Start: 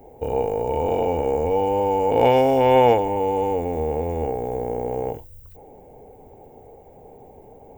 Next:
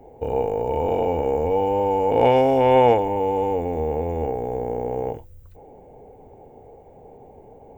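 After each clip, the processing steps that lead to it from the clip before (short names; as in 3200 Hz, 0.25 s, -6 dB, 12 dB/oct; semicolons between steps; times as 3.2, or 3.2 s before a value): LPF 3800 Hz 6 dB/oct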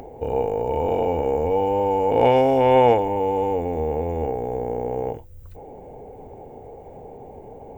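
upward compressor, threshold -32 dBFS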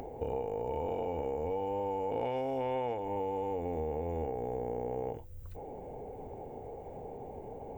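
compressor 6:1, threshold -28 dBFS, peak gain reduction 16 dB; gain -4 dB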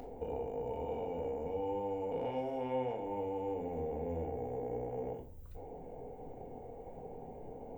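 shoebox room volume 630 m³, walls furnished, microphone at 1.8 m; gain -6.5 dB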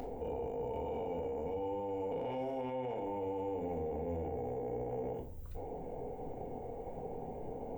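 limiter -35.5 dBFS, peak gain reduction 9.5 dB; gain +4.5 dB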